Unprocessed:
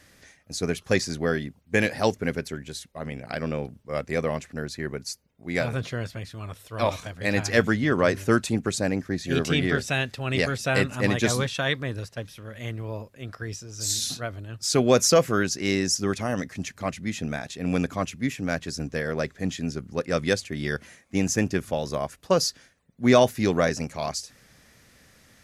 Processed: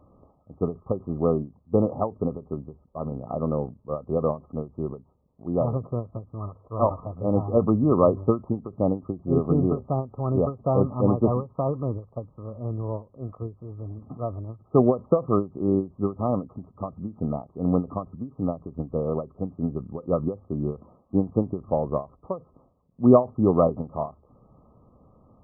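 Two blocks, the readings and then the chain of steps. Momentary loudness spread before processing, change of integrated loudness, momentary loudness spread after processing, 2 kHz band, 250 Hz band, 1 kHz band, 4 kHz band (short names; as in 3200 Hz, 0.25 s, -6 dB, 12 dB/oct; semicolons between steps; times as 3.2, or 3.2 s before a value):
14 LU, 0.0 dB, 15 LU, under -40 dB, +2.0 dB, 0.0 dB, under -40 dB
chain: brick-wall FIR low-pass 1300 Hz; ending taper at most 230 dB/s; gain +3.5 dB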